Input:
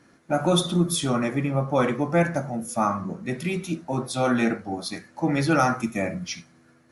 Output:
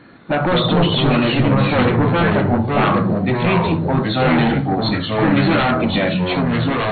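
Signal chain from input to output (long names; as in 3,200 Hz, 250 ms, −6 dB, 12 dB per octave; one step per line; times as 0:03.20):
in parallel at +2 dB: brickwall limiter −19.5 dBFS, peak gain reduction 11 dB
on the sum: sine wavefolder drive 9 dB, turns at −5.5 dBFS
delay with pitch and tempo change per echo 154 ms, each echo −3 semitones, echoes 2
linear-phase brick-wall low-pass 4,400 Hz
level −7.5 dB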